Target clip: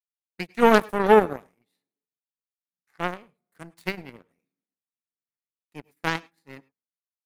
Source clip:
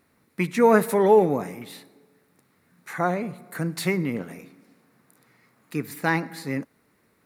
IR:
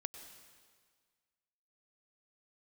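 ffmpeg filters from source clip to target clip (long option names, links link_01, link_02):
-filter_complex "[0:a]agate=range=-33dB:threshold=-52dB:ratio=3:detection=peak,aeval=exprs='0.708*(cos(1*acos(clip(val(0)/0.708,-1,1)))-cos(1*PI/2))+0.1*(cos(7*acos(clip(val(0)/0.708,-1,1)))-cos(7*PI/2))':channel_layout=same,asplit=2[link_01][link_02];[1:a]atrim=start_sample=2205,afade=type=out:start_time=0.16:duration=0.01,atrim=end_sample=7497[link_03];[link_02][link_03]afir=irnorm=-1:irlink=0,volume=-2dB[link_04];[link_01][link_04]amix=inputs=2:normalize=0,volume=-2.5dB"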